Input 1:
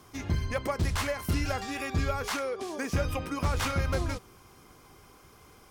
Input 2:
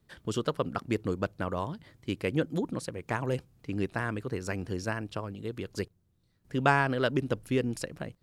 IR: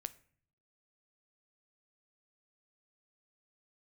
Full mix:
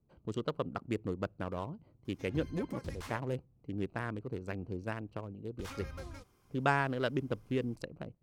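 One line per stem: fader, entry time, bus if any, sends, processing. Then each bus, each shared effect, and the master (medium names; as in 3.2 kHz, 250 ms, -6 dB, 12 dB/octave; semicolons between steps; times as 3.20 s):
-17.5 dB, 2.05 s, muted 3.19–5.59 s, send -10 dB, none
-5.5 dB, 0.00 s, send -22.5 dB, local Wiener filter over 25 samples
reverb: on, RT60 0.55 s, pre-delay 9 ms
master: none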